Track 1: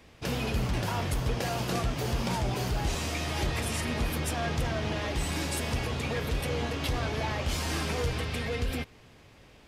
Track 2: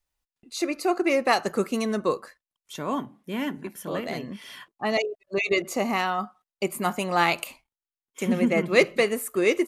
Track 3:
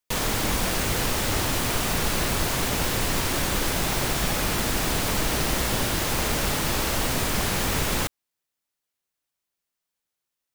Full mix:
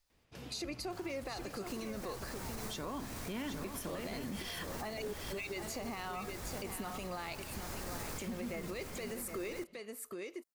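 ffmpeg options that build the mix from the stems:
-filter_complex "[0:a]adelay=100,volume=-18dB[a];[1:a]equalizer=f=4.7k:t=o:w=0.58:g=6.5,acompressor=threshold=-29dB:ratio=3,alimiter=level_in=3dB:limit=-24dB:level=0:latency=1:release=258,volume=-3dB,volume=1.5dB,asplit=3[b][c][d];[c]volume=-9dB[e];[2:a]equalizer=f=3k:t=o:w=0.51:g=-12.5,alimiter=limit=-20dB:level=0:latency=1,adelay=800,volume=-7dB,asplit=2[f][g];[g]volume=-10dB[h];[d]apad=whole_len=500353[i];[f][i]sidechaincompress=threshold=-52dB:ratio=4:attack=16:release=530[j];[e][h]amix=inputs=2:normalize=0,aecho=0:1:767:1[k];[a][b][j][k]amix=inputs=4:normalize=0,alimiter=level_in=7.5dB:limit=-24dB:level=0:latency=1:release=141,volume=-7.5dB"

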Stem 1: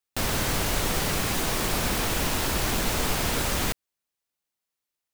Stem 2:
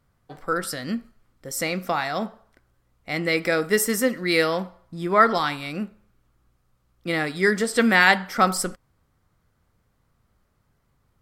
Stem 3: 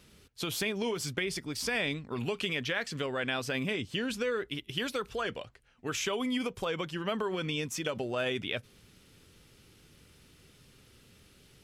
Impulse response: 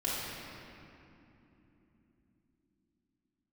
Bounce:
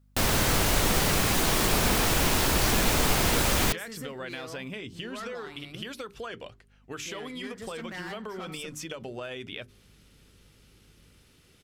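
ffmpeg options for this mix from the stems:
-filter_complex "[0:a]volume=2dB[a];[1:a]asoftclip=type=tanh:threshold=-17.5dB,aeval=exprs='val(0)+0.00501*(sin(2*PI*50*n/s)+sin(2*PI*2*50*n/s)/2+sin(2*PI*3*50*n/s)/3+sin(2*PI*4*50*n/s)/4+sin(2*PI*5*50*n/s)/5)':c=same,volume=-14dB[b];[2:a]bandreject=f=50:t=h:w=6,bandreject=f=100:t=h:w=6,bandreject=f=150:t=h:w=6,bandreject=f=200:t=h:w=6,bandreject=f=250:t=h:w=6,bandreject=f=300:t=h:w=6,bandreject=f=350:t=h:w=6,bandreject=f=400:t=h:w=6,adelay=1050,volume=-0.5dB[c];[b][c]amix=inputs=2:normalize=0,acompressor=threshold=-34dB:ratio=6,volume=0dB[d];[a][d]amix=inputs=2:normalize=0"

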